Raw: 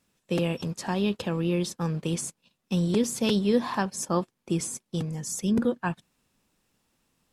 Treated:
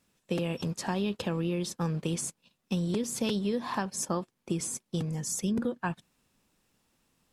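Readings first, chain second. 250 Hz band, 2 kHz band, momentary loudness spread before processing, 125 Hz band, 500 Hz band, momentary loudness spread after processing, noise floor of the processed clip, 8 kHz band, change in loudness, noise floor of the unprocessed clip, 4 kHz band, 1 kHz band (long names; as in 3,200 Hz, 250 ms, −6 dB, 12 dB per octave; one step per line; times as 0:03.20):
−4.5 dB, −3.5 dB, 7 LU, −3.5 dB, −5.0 dB, 5 LU, −78 dBFS, −1.0 dB, −4.0 dB, −78 dBFS, −4.0 dB, −3.5 dB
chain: downward compressor 10 to 1, threshold −26 dBFS, peak gain reduction 9.5 dB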